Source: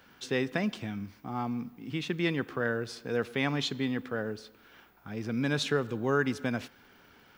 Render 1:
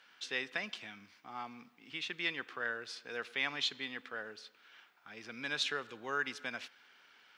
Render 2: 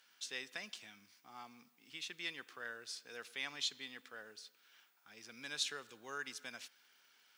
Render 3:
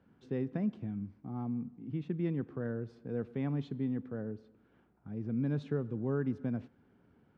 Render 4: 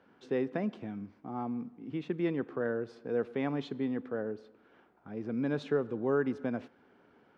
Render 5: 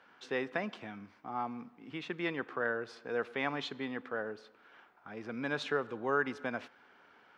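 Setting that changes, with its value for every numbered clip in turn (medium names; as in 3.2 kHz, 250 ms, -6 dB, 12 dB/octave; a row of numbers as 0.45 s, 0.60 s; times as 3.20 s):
band-pass filter, frequency: 3 kHz, 7.8 kHz, 140 Hz, 400 Hz, 1 kHz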